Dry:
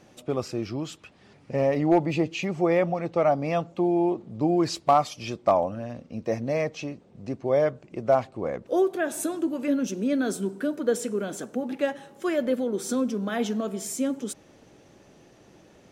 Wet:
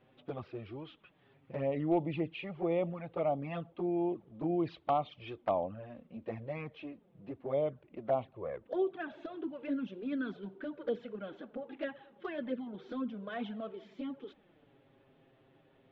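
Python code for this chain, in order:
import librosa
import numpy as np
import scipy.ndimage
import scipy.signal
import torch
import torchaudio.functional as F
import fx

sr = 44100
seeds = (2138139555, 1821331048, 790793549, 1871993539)

y = scipy.signal.sosfilt(scipy.signal.ellip(4, 1.0, 70, 3500.0, 'lowpass', fs=sr, output='sos'), x)
y = fx.env_flanger(y, sr, rest_ms=8.1, full_db=-19.0)
y = F.gain(torch.from_numpy(y), -7.5).numpy()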